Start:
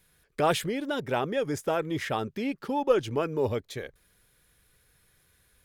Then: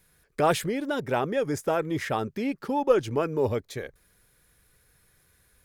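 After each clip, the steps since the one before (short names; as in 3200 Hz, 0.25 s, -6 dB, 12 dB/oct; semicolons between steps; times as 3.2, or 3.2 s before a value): bell 3200 Hz -4.5 dB 0.69 oct; gain +2 dB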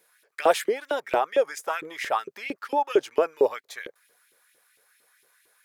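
LFO high-pass saw up 4.4 Hz 360–3000 Hz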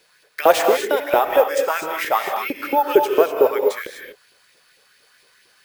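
non-linear reverb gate 0.27 s rising, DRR 3.5 dB; careless resampling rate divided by 3×, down none, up hold; gain +6 dB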